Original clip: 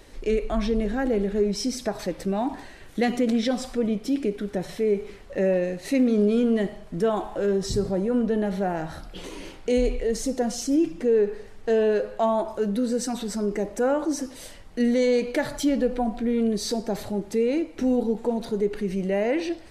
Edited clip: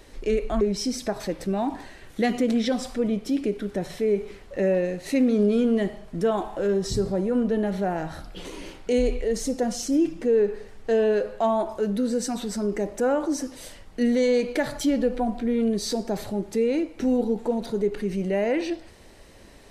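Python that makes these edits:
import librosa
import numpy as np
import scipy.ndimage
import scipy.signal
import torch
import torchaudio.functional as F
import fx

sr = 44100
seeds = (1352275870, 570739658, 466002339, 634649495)

y = fx.edit(x, sr, fx.cut(start_s=0.61, length_s=0.79), tone=tone)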